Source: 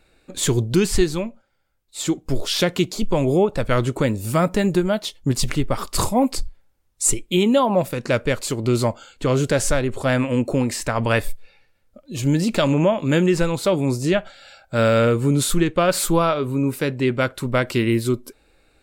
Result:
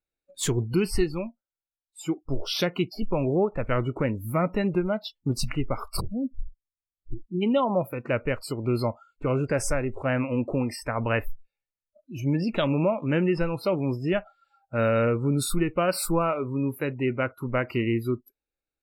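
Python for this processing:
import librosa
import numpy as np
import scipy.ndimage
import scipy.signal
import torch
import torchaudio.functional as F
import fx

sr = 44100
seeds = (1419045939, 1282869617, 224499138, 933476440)

y = fx.gaussian_blur(x, sr, sigma=23.0, at=(5.99, 7.41), fade=0.02)
y = fx.noise_reduce_blind(y, sr, reduce_db=28)
y = F.gain(torch.from_numpy(y), -6.0).numpy()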